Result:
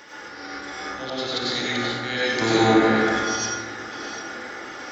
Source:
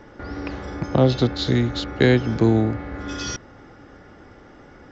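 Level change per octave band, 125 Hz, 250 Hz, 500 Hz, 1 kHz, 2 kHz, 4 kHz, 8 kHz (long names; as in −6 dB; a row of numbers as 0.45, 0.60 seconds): −12.0 dB, −2.5 dB, −1.5 dB, +7.0 dB, +6.5 dB, +4.5 dB, can't be measured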